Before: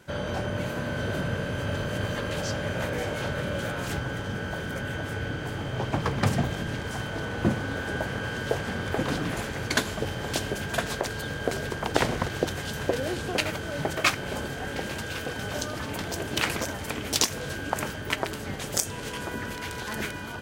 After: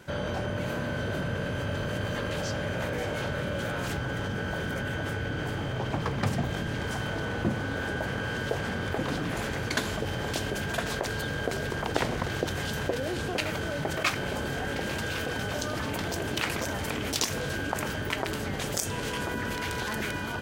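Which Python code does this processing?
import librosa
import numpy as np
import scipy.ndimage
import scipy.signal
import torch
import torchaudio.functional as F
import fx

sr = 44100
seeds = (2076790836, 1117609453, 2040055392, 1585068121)

p1 = fx.peak_eq(x, sr, hz=9800.0, db=-2.5, octaves=1.5)
p2 = fx.over_compress(p1, sr, threshold_db=-35.0, ratio=-1.0)
p3 = p1 + F.gain(torch.from_numpy(p2), -0.5).numpy()
y = F.gain(torch.from_numpy(p3), -4.5).numpy()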